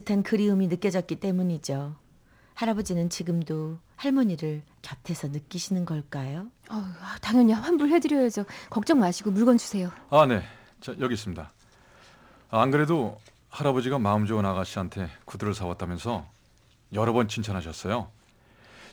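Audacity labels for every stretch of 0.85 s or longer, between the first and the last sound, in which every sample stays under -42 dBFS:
11.470000	12.520000	silence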